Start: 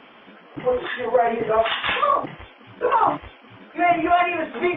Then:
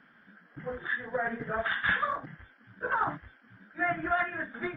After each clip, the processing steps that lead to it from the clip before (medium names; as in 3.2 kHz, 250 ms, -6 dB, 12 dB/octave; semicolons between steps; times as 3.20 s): FFT filter 100 Hz 0 dB, 180 Hz +4 dB, 390 Hz -11 dB, 1.1 kHz -10 dB, 1.6 kHz +8 dB, 2.6 kHz -16 dB, 4.2 kHz -1 dB; upward expansion 1.5:1, over -35 dBFS; trim -2.5 dB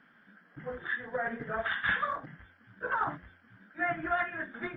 de-hum 88.82 Hz, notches 7; trim -2 dB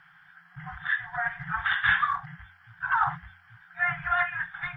FFT band-reject 180–700 Hz; trim +6.5 dB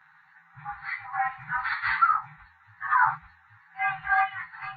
frequency axis rescaled in octaves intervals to 108%; high-order bell 920 Hz +14 dB; trim -5 dB